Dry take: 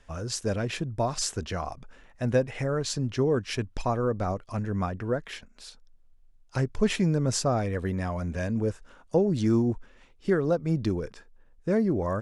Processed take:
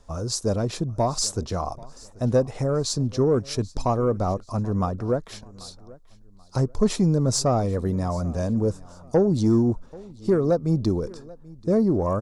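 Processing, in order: band shelf 2200 Hz -13 dB 1.3 oct; soft clip -14.5 dBFS, distortion -23 dB; on a send: feedback echo 0.785 s, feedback 33%, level -22 dB; on the sum: gain +5 dB

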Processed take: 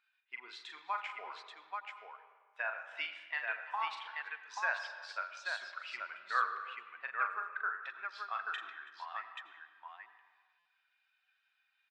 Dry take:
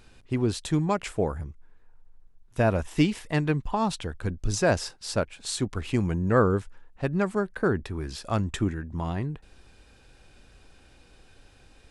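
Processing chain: per-bin expansion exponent 1.5; HPF 1300 Hz 24 dB/oct; high shelf 4700 Hz -6 dB; in parallel at +3 dB: compressor, threshold -45 dBFS, peak gain reduction 16.5 dB; on the sum: tape spacing loss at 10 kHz 39 dB; tapped delay 41/330/833 ms -6.5/-20/-4 dB; on a send at -10 dB: reverb RT60 1.5 s, pre-delay 77 ms; on the sum: stuck buffer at 10.59, samples 256, times 10; gain +4 dB

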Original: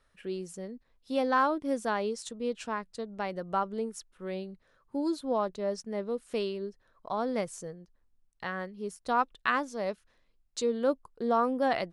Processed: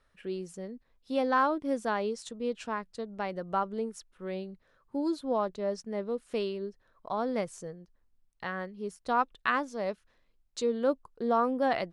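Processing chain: high shelf 6600 Hz -6.5 dB

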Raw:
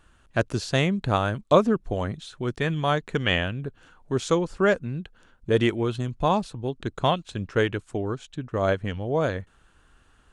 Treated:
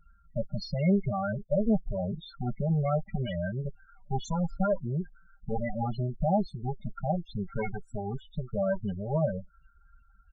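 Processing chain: minimum comb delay 1.4 ms; limiter -19 dBFS, peak gain reduction 11 dB; comb 5.1 ms, depth 63%; loudest bins only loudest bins 8

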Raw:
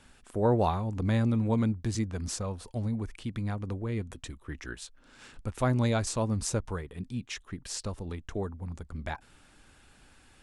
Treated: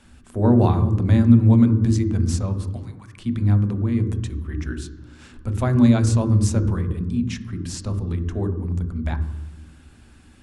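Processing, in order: 2.76–3.18 HPF 850 Hz 24 dB/oct; on a send: reverb RT60 1.1 s, pre-delay 3 ms, DRR 7.5 dB; on the sum: gain +2.5 dB

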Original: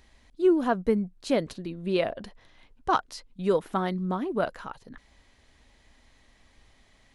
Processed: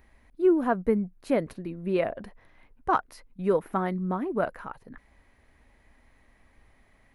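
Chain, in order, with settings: band shelf 4900 Hz -11.5 dB

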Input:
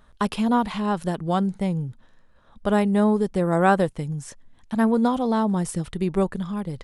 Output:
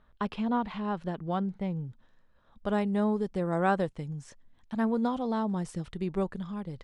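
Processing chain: LPF 3400 Hz 12 dB/oct, from 1.85 s 6400 Hz; gain -8 dB

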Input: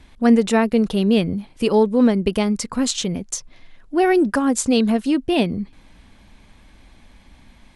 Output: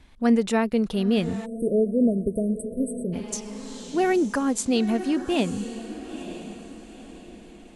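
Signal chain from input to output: diffused feedback echo 0.929 s, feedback 41%, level -12 dB; spectral delete 1.46–3.13, 710–8000 Hz; gain -5.5 dB

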